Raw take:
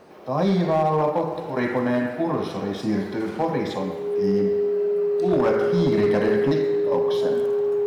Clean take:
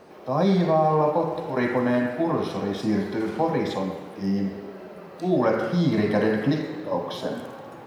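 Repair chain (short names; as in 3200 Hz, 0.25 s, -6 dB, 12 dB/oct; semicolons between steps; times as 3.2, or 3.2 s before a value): clip repair -14 dBFS; notch 410 Hz, Q 30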